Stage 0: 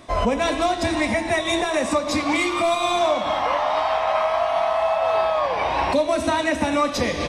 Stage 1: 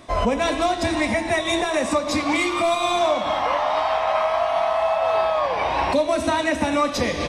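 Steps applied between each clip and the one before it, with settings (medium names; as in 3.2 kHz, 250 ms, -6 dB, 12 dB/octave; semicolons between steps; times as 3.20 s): no audible change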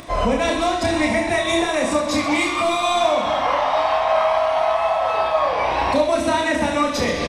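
upward compressor, threshold -34 dBFS; on a send: reverse bouncing-ball echo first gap 30 ms, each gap 1.4×, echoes 5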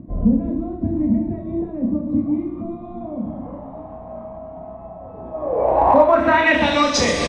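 low-pass sweep 220 Hz -> 8.3 kHz, 5.19–7.14 s; in parallel at -11.5 dB: one-sided clip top -11 dBFS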